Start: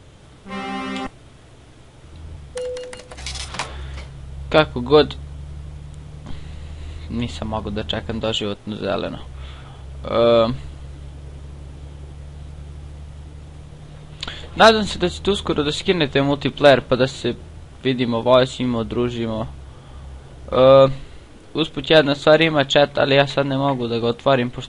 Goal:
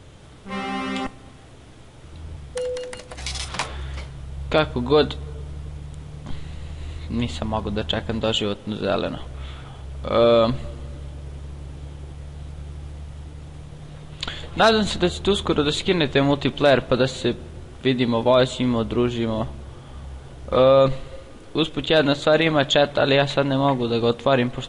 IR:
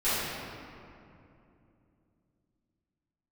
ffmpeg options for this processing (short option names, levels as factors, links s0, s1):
-filter_complex "[0:a]alimiter=limit=0.422:level=0:latency=1:release=13,asplit=2[s0][s1];[s1]lowpass=3200[s2];[1:a]atrim=start_sample=2205,asetrate=61740,aresample=44100[s3];[s2][s3]afir=irnorm=-1:irlink=0,volume=0.0251[s4];[s0][s4]amix=inputs=2:normalize=0"